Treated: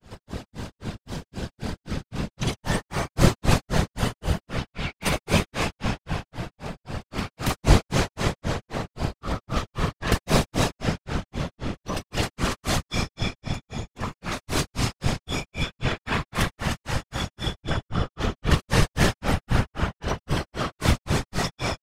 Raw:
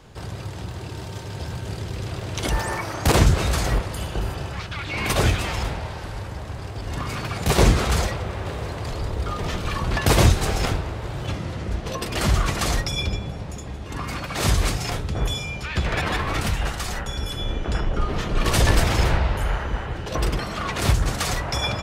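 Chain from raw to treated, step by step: digital reverb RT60 3.2 s, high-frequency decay 0.9×, pre-delay 40 ms, DRR -1 dB; grains 0.195 s, grains 3.8/s, pitch spread up and down by 0 st; whisperiser

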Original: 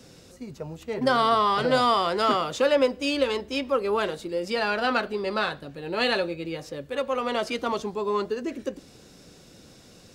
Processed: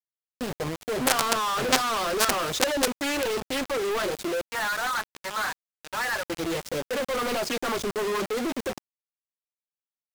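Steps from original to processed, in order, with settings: reverb removal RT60 0.58 s; 4.41–6.3 Chebyshev band-pass 870–1800 Hz, order 2; companded quantiser 2-bit; Doppler distortion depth 0.94 ms; gain -1 dB

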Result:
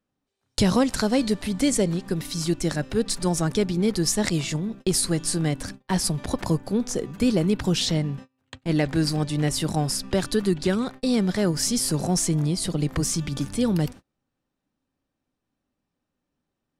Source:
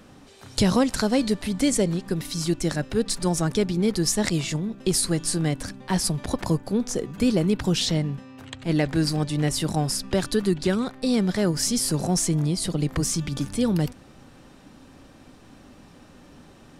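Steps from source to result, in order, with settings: gate -37 dBFS, range -32 dB

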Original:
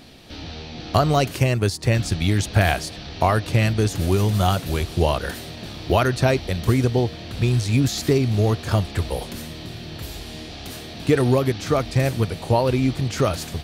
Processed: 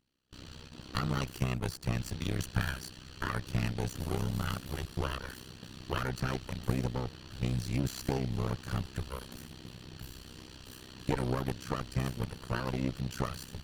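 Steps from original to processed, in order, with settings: minimum comb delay 0.68 ms; AM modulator 64 Hz, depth 90%; gate with hold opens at -29 dBFS; gain -8.5 dB

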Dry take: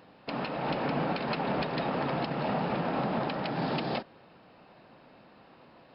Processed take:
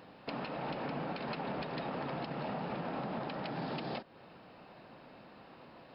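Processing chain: compressor 2.5:1, threshold -41 dBFS, peak gain reduction 10 dB; gain +1 dB

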